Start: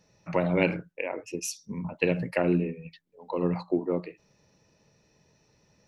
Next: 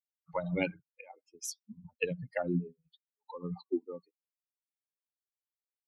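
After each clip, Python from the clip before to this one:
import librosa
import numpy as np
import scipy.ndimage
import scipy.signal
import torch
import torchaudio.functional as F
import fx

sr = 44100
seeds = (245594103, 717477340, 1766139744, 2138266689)

y = fx.bin_expand(x, sr, power=3.0)
y = y * 10.0 ** (-2.5 / 20.0)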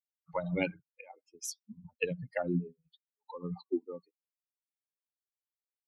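y = x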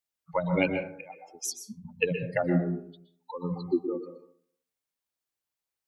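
y = fx.rev_plate(x, sr, seeds[0], rt60_s=0.62, hf_ratio=0.35, predelay_ms=110, drr_db=6.0)
y = y * 10.0 ** (6.0 / 20.0)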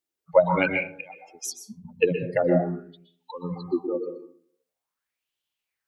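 y = fx.bell_lfo(x, sr, hz=0.46, low_hz=320.0, high_hz=3200.0, db=15)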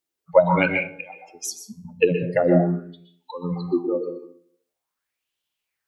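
y = fx.comb_fb(x, sr, f0_hz=87.0, decay_s=0.48, harmonics='all', damping=0.0, mix_pct=50)
y = y * 10.0 ** (7.5 / 20.0)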